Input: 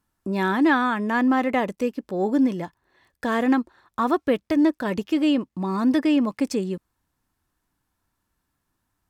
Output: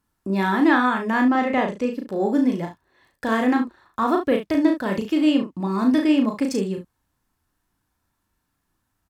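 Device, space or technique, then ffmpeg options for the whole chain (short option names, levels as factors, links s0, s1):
slapback doubling: -filter_complex "[0:a]asettb=1/sr,asplit=3[s0][s1][s2];[s0]atrim=end=1.224[s3];[s1]atrim=start=1.22:end=1.93,asetpts=PTS-STARTPTS,afade=t=in:d=0.004:c=qsin,afade=t=out:st=0.706:d=0.004:c=qsin,lowpass=6900[s4];[s2]atrim=start=1.926[s5];[s3][s4]acrossfade=d=0.004:c1=hsin:c2=qsin[s6];[s6][s5]acrossfade=d=0.004:c1=qsin:c2=hsin,asplit=3[s7][s8][s9];[s8]adelay=36,volume=0.631[s10];[s9]adelay=70,volume=0.282[s11];[s7][s10][s11]amix=inputs=3:normalize=0"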